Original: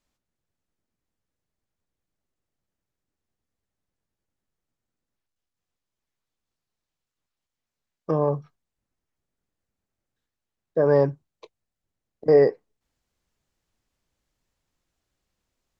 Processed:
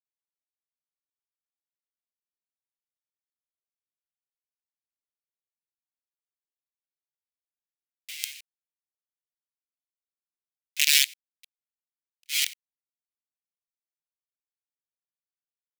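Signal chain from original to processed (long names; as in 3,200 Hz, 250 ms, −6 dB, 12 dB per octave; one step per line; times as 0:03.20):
low-pass filter 3,100 Hz 6 dB per octave
log-companded quantiser 2 bits
Butterworth high-pass 2,200 Hz 48 dB per octave
tremolo along a rectified sine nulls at 1.1 Hz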